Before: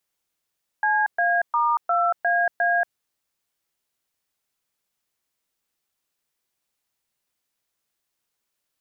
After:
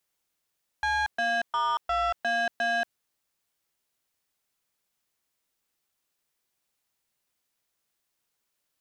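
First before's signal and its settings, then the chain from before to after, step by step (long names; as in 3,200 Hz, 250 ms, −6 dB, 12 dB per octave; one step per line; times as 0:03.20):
touch tones "CA*2AA", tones 233 ms, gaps 121 ms, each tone −20.5 dBFS
soft clipping −23.5 dBFS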